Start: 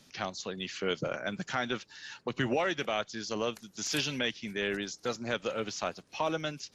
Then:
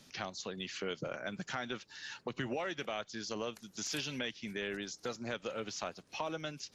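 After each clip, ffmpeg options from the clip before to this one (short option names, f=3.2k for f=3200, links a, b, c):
-af "acompressor=threshold=-40dB:ratio=2"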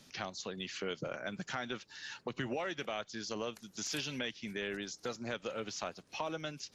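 -af anull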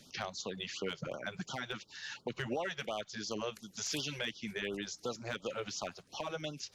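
-af "volume=28.5dB,asoftclip=hard,volume=-28.5dB,afftfilt=real='re*(1-between(b*sr/1024,230*pow(2100/230,0.5+0.5*sin(2*PI*2.8*pts/sr))/1.41,230*pow(2100/230,0.5+0.5*sin(2*PI*2.8*pts/sr))*1.41))':imag='im*(1-between(b*sr/1024,230*pow(2100/230,0.5+0.5*sin(2*PI*2.8*pts/sr))/1.41,230*pow(2100/230,0.5+0.5*sin(2*PI*2.8*pts/sr))*1.41))':win_size=1024:overlap=0.75,volume=1.5dB"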